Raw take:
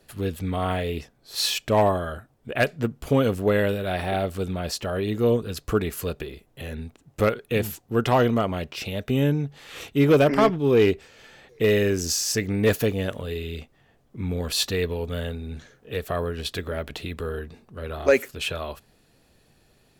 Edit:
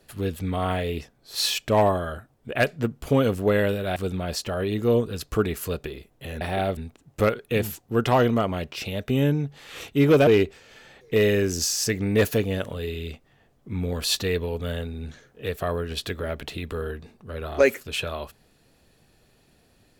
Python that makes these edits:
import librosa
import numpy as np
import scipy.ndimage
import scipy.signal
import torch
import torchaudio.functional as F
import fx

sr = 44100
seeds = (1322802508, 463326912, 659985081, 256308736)

y = fx.edit(x, sr, fx.move(start_s=3.96, length_s=0.36, to_s=6.77),
    fx.cut(start_s=10.27, length_s=0.48), tone=tone)